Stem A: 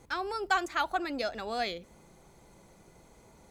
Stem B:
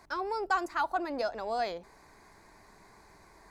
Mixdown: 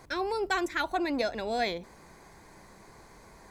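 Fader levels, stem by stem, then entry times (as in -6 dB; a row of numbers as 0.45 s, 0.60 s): +0.5 dB, +2.0 dB; 0.00 s, 0.00 s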